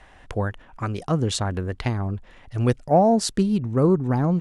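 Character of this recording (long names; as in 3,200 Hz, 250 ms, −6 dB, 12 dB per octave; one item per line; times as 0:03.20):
background noise floor −51 dBFS
spectral slope −7.0 dB per octave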